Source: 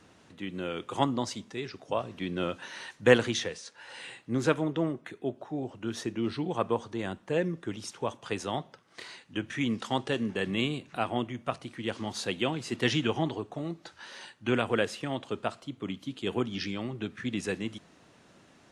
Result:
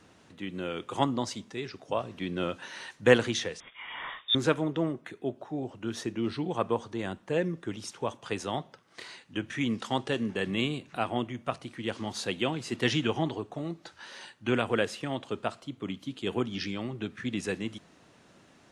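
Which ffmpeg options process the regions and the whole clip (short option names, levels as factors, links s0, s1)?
-filter_complex "[0:a]asettb=1/sr,asplit=3[s0][s1][s2];[s0]atrim=end=3.604[s3];[s1]atrim=start=3.6:end=4.35,asetpts=PTS-STARTPTS,afade=t=in:d=0.004:c=qsin,afade=t=out:st=0.746:d=0.004:c=qsin,lowpass=f=3200:t=q:w=0.5098,lowpass=f=3200:t=q:w=0.6013,lowpass=f=3200:t=q:w=0.9,lowpass=f=3200:t=q:w=2.563,afreqshift=-3800,acontrast=56[s4];[s2]atrim=start=4.346[s5];[s3][s4]acrossfade=d=0.004:c1=hsin:c2=qsin[s6];[s6][s5]acrossfade=d=0.004:c1=qsin:c2=hsin"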